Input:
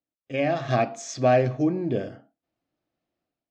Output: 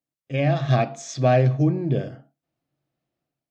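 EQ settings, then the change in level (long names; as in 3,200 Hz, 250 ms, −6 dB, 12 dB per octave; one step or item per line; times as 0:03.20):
parametric band 140 Hz +15 dB 0.27 octaves
dynamic equaliser 3,600 Hz, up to +6 dB, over −55 dBFS, Q 5
0.0 dB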